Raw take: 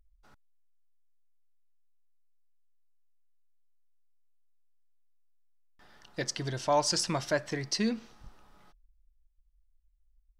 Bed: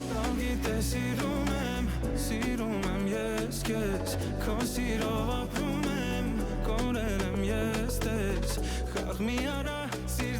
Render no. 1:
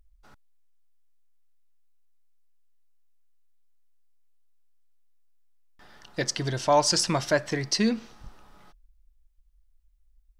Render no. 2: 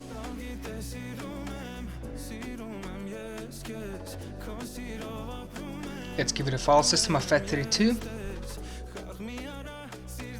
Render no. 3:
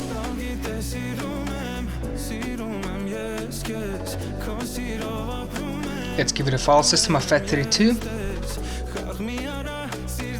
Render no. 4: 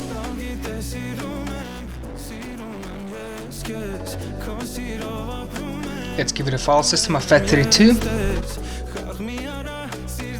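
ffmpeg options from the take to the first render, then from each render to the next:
-af "volume=5.5dB"
-filter_complex "[1:a]volume=-7.5dB[a];[0:a][a]amix=inputs=2:normalize=0"
-filter_complex "[0:a]asplit=2[a][b];[b]alimiter=limit=-17dB:level=0:latency=1:release=192,volume=2.5dB[c];[a][c]amix=inputs=2:normalize=0,acompressor=mode=upward:threshold=-23dB:ratio=2.5"
-filter_complex "[0:a]asettb=1/sr,asplit=3[a][b][c];[a]atrim=end=1.624[d];[b]atrim=start=1.62:end=3.58,asetpts=PTS-STARTPTS,afade=t=in:d=0.004:c=qsin,afade=t=out:st=1.956:d=0.004:c=qsin,volume=30dB,asoftclip=hard,volume=-30dB[e];[c]atrim=start=3.576[f];[d][e]acrossfade=d=0.004:c1=hsin:c2=qsin[g];[g][f]acrossfade=d=0.004:c1=qsin:c2=hsin,asettb=1/sr,asplit=3[h][i][j];[h]atrim=end=7.304[k];[i]atrim=start=7.3:end=8.41,asetpts=PTS-STARTPTS,afade=t=in:d=0.004:c=qsin,afade=t=out:st=1.106:d=0.004:c=qsin,acontrast=74[l];[j]atrim=start=8.406[m];[k][l]acrossfade=d=0.004:c1=hsin:c2=qsin[n];[n][m]acrossfade=d=0.004:c1=qsin:c2=hsin"

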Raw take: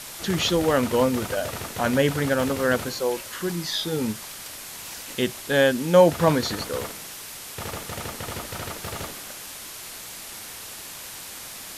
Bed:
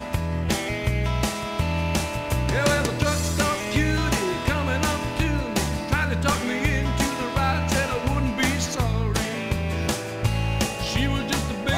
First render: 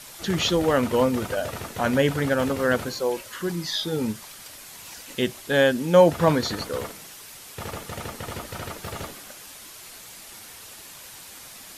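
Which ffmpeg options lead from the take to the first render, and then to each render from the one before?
-af "afftdn=nr=6:nf=-39"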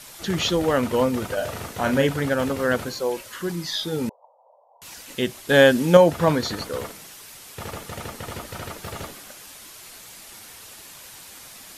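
-filter_complex "[0:a]asettb=1/sr,asplit=3[a][b][c];[a]atrim=end=1.344[d];[b]atrim=start=1.34:end=2.07,asetpts=PTS-STARTPTS,afade=t=in:d=0.004:c=qsin,afade=t=out:st=0.726:d=0.004:c=qsin,asplit=2[e][f];[f]adelay=37,volume=-7dB[g];[e][g]amix=inputs=2:normalize=0,atrim=end_sample=32193[h];[c]atrim=start=2.066[i];[d][h]acrossfade=d=0.004:c1=hsin:c2=qsin[j];[j][i]acrossfade=d=0.004:c1=qsin:c2=hsin,asettb=1/sr,asplit=3[k][l][m];[k]atrim=end=4.094[n];[l]atrim=start=4.09:end=4.82,asetpts=PTS-STARTPTS,afade=t=in:d=0.004:c=qsin,afade=t=out:st=0.726:d=0.004:c=qsin,asuperpass=centerf=690:order=12:qfactor=1.4[o];[m]atrim=start=4.816[p];[n][o]acrossfade=d=0.004:c1=hsin:c2=qsin[q];[q][p]acrossfade=d=0.004:c1=qsin:c2=hsin,asplit=3[r][s][t];[r]atrim=end=5.492[u];[s]atrim=start=5.488:end=5.972,asetpts=PTS-STARTPTS,volume=5dB[v];[t]atrim=start=5.968[w];[u][v]acrossfade=d=0.004:c1=hsin:c2=hsin[x];[x][w]acrossfade=d=0.004:c1=hsin:c2=hsin"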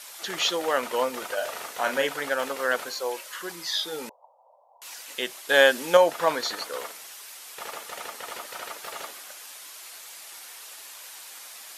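-af "highpass=620"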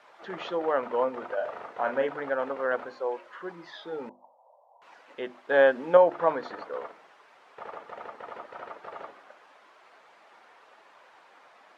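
-af "lowpass=1.2k,bandreject=f=50:t=h:w=6,bandreject=f=100:t=h:w=6,bandreject=f=150:t=h:w=6,bandreject=f=200:t=h:w=6,bandreject=f=250:t=h:w=6,bandreject=f=300:t=h:w=6,bandreject=f=350:t=h:w=6"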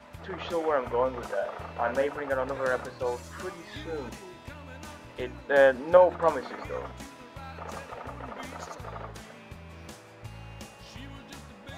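-filter_complex "[1:a]volume=-20.5dB[a];[0:a][a]amix=inputs=2:normalize=0"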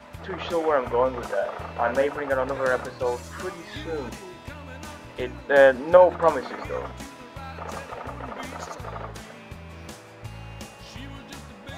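-af "volume=4.5dB,alimiter=limit=-3dB:level=0:latency=1"

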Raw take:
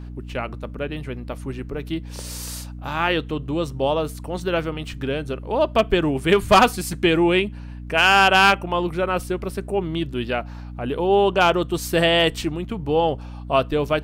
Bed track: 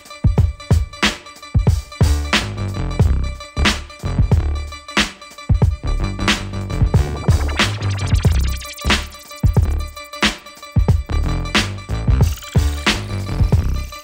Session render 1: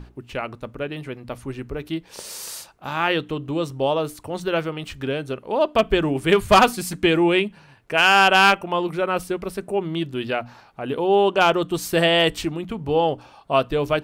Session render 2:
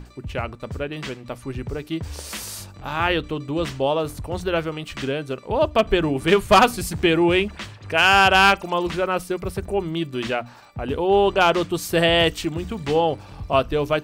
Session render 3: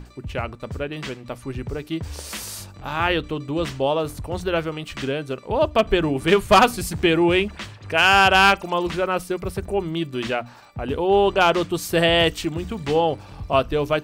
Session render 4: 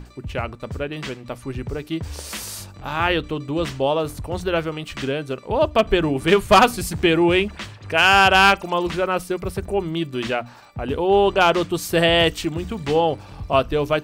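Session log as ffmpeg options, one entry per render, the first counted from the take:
-af "bandreject=f=60:t=h:w=6,bandreject=f=120:t=h:w=6,bandreject=f=180:t=h:w=6,bandreject=f=240:t=h:w=6,bandreject=f=300:t=h:w=6"
-filter_complex "[1:a]volume=-19dB[a];[0:a][a]amix=inputs=2:normalize=0"
-af anull
-af "volume=1dB"

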